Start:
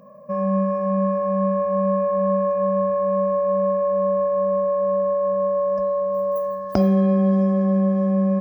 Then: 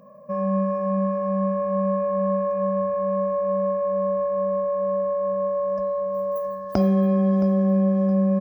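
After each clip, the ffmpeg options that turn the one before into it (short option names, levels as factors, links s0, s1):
-af "aecho=1:1:669|1338|2007:0.168|0.0604|0.0218,volume=0.794"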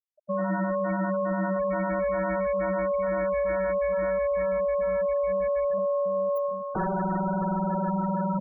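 -af "aeval=exprs='0.0841*(abs(mod(val(0)/0.0841+3,4)-2)-1)':c=same,afftfilt=real='re*gte(hypot(re,im),0.0708)':imag='im*gte(hypot(re,im),0.0708)':win_size=1024:overlap=0.75"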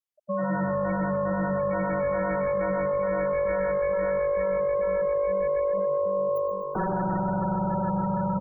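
-filter_complex "[0:a]asplit=6[s0][s1][s2][s3][s4][s5];[s1]adelay=125,afreqshift=-50,volume=0.316[s6];[s2]adelay=250,afreqshift=-100,volume=0.158[s7];[s3]adelay=375,afreqshift=-150,volume=0.0794[s8];[s4]adelay=500,afreqshift=-200,volume=0.0394[s9];[s5]adelay=625,afreqshift=-250,volume=0.0197[s10];[s0][s6][s7][s8][s9][s10]amix=inputs=6:normalize=0"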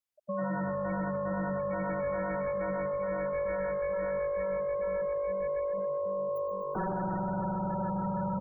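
-af "alimiter=level_in=1.33:limit=0.0631:level=0:latency=1:release=39,volume=0.75"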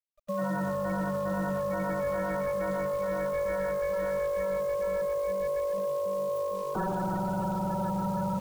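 -af "acrusher=bits=9:dc=4:mix=0:aa=0.000001,volume=1.26"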